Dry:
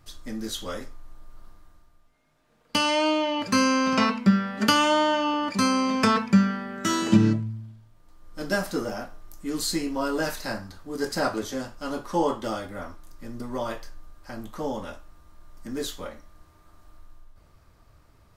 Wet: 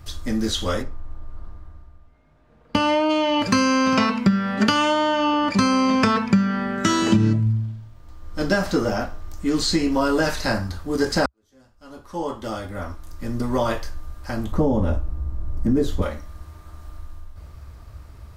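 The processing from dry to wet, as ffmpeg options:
ffmpeg -i in.wav -filter_complex "[0:a]asplit=3[link_01][link_02][link_03];[link_01]afade=type=out:start_time=0.81:duration=0.02[link_04];[link_02]lowpass=frequency=1200:poles=1,afade=type=in:start_time=0.81:duration=0.02,afade=type=out:start_time=3.09:duration=0.02[link_05];[link_03]afade=type=in:start_time=3.09:duration=0.02[link_06];[link_04][link_05][link_06]amix=inputs=3:normalize=0,asettb=1/sr,asplit=3[link_07][link_08][link_09];[link_07]atrim=end=4.544[link_10];[link_08]atrim=start=4.54:end=6.79,asetpts=PTS-STARTPTS,afade=type=in:duration=0.004:curve=qsin,afade=type=out:start_time=2.246:duration=0.004:curve=qsin,highshelf=frequency=9700:gain=-9[link_11];[link_09]atrim=start=6.786[link_12];[link_10][link_11]acrossfade=duration=0.004:curve1=hsin:curve2=qsin[link_13];[link_13][link_12]acrossfade=duration=0.004:curve1=qsin:curve2=hsin,asettb=1/sr,asplit=3[link_14][link_15][link_16];[link_14]atrim=end=7.524[link_17];[link_15]atrim=start=7.52:end=9.92,asetpts=PTS-STARTPTS,afade=type=in:duration=0.004:curve=qsin,afade=type=out:start_time=2.396:duration=0.004:curve=qsin,equalizer=frequency=11000:width_type=o:width=0.67:gain=-9[link_18];[link_16]atrim=start=9.916[link_19];[link_17][link_18]acrossfade=duration=0.004:curve1=hsin:curve2=qsin[link_20];[link_20][link_19]acrossfade=duration=0.004:curve1=qsin:curve2=hsin,asettb=1/sr,asplit=3[link_21][link_22][link_23];[link_21]atrim=end=14.524[link_24];[link_22]atrim=start=14.52:end=16.02,asetpts=PTS-STARTPTS,afade=type=in:duration=0.004:curve=qsin,afade=type=out:start_time=1.496:duration=0.004:curve=qsin,tiltshelf=frequency=880:gain=10[link_25];[link_23]atrim=start=16.016[link_26];[link_24][link_25]acrossfade=duration=0.004:curve1=hsin:curve2=qsin[link_27];[link_27][link_26]acrossfade=duration=0.004:curve1=qsin:curve2=hsin,asplit=2[link_28][link_29];[link_28]atrim=end=11.26,asetpts=PTS-STARTPTS,afade=type=out:start_time=11.256:duration=0.004:curve=hsin[link_30];[link_29]atrim=start=11.26,asetpts=PTS-STARTPTS,afade=type=in:duration=2.07:curve=qua[link_31];[link_30][link_31]concat=n=2:v=0:a=1,acompressor=threshold=-25dB:ratio=6,equalizer=frequency=66:width_type=o:width=1.1:gain=13.5,acrossover=split=7600[link_32][link_33];[link_33]acompressor=threshold=-55dB:ratio=4:attack=1:release=60[link_34];[link_32][link_34]amix=inputs=2:normalize=0,volume=9dB" out.wav

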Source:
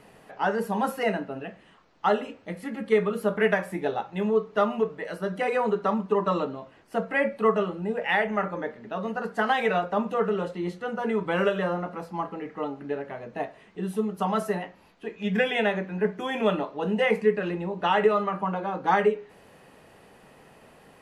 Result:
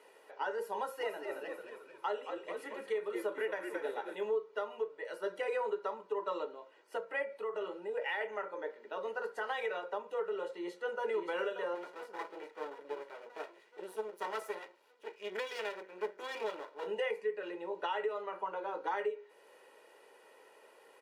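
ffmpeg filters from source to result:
ffmpeg -i in.wav -filter_complex "[0:a]asplit=3[link_01][link_02][link_03];[link_01]afade=type=out:start_time=0.99:duration=0.02[link_04];[link_02]asplit=8[link_05][link_06][link_07][link_08][link_09][link_10][link_11][link_12];[link_06]adelay=221,afreqshift=-82,volume=-8dB[link_13];[link_07]adelay=442,afreqshift=-164,volume=-13dB[link_14];[link_08]adelay=663,afreqshift=-246,volume=-18.1dB[link_15];[link_09]adelay=884,afreqshift=-328,volume=-23.1dB[link_16];[link_10]adelay=1105,afreqshift=-410,volume=-28.1dB[link_17];[link_11]adelay=1326,afreqshift=-492,volume=-33.2dB[link_18];[link_12]adelay=1547,afreqshift=-574,volume=-38.2dB[link_19];[link_05][link_13][link_14][link_15][link_16][link_17][link_18][link_19]amix=inputs=8:normalize=0,afade=type=in:start_time=0.99:duration=0.02,afade=type=out:start_time=4.15:duration=0.02[link_20];[link_03]afade=type=in:start_time=4.15:duration=0.02[link_21];[link_04][link_20][link_21]amix=inputs=3:normalize=0,asettb=1/sr,asplit=3[link_22][link_23][link_24];[link_22]atrim=end=7.224[link_25];[link_23]atrim=start=7.22:end=8.21,asetpts=PTS-STARTPTS,afade=type=in:duration=0.004:curve=qsin,afade=type=out:start_time=0.986:duration=0.004:curve=qsin,acompressor=threshold=-26dB:ratio=5:attack=3.2:release=140:knee=1:detection=peak[link_26];[link_24]atrim=start=8.206[link_27];[link_25][link_26]acrossfade=duration=0.004:curve1=hsin:curve2=qsin[link_28];[link_28][link_27]acrossfade=duration=0.004:curve1=qsin:curve2=hsin,asplit=2[link_29][link_30];[link_30]afade=type=in:start_time=10.5:duration=0.01,afade=type=out:start_time=11.06:duration=0.01,aecho=0:1:580|1160|1740|2320|2900|3480|4060|4640|5220|5800:0.630957|0.410122|0.266579|0.173277|0.11263|0.0732094|0.0475861|0.030931|0.0201051|0.0130683[link_31];[link_29][link_31]amix=inputs=2:normalize=0,asettb=1/sr,asplit=3[link_32][link_33][link_34];[link_32]atrim=end=11.754[link_35];[link_33]atrim=start=11.75:end=16.87,asetpts=PTS-STARTPTS,afade=type=in:duration=0.004:curve=qsin,afade=type=out:start_time=5.116:duration=0.004:curve=qsin,aeval=exprs='max(val(0),0)':channel_layout=same[link_36];[link_34]atrim=start=16.866[link_37];[link_35][link_36]acrossfade=duration=0.004:curve1=hsin:curve2=qsin[link_38];[link_38][link_37]acrossfade=duration=0.004:curve1=qsin:curve2=hsin,highpass=frequency=330:width=0.5412,highpass=frequency=330:width=1.3066,aecho=1:1:2.1:0.54,alimiter=limit=-18.5dB:level=0:latency=1:release=436,volume=-7.5dB" out.wav

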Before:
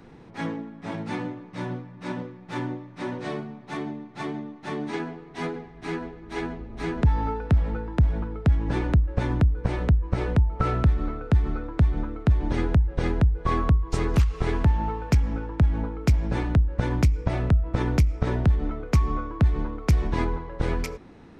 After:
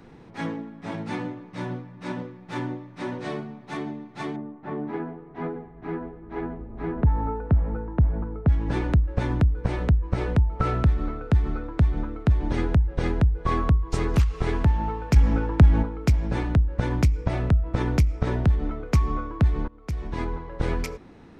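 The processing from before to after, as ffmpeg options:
ffmpeg -i in.wav -filter_complex "[0:a]asettb=1/sr,asplit=3[link_01][link_02][link_03];[link_01]atrim=end=4.364[link_04];[link_02]atrim=start=4.36:end=8.48,asetpts=PTS-STARTPTS,afade=type=in:duration=0.004:curve=qsin,afade=type=out:start_time=4.116:duration=0.004:curve=qsin,lowpass=1300[link_05];[link_03]atrim=start=8.476[link_06];[link_04][link_05]acrossfade=duration=0.004:curve1=hsin:curve2=qsin[link_07];[link_07][link_06]acrossfade=duration=0.004:curve1=qsin:curve2=hsin,asettb=1/sr,asplit=3[link_08][link_09][link_10];[link_08]atrim=end=15.164[link_11];[link_09]atrim=start=15.16:end=15.83,asetpts=PTS-STARTPTS,afade=type=in:duration=0.004:curve=qsin,afade=type=out:start_time=0.666:duration=0.004:curve=qsin,acontrast=65[link_12];[link_10]atrim=start=15.826[link_13];[link_11][link_12]acrossfade=duration=0.004:curve1=hsin:curve2=qsin[link_14];[link_14][link_13]acrossfade=duration=0.004:curve1=qsin:curve2=hsin,asplit=2[link_15][link_16];[link_15]atrim=end=19.68,asetpts=PTS-STARTPTS,afade=type=out:start_time=19.676:duration=0.004:curve=hsin:silence=0.0707946[link_17];[link_16]atrim=start=19.68,asetpts=PTS-STARTPTS,afade=type=in:duration=0.88:silence=0.0707946[link_18];[link_17][link_18]concat=n=2:v=0:a=1" out.wav

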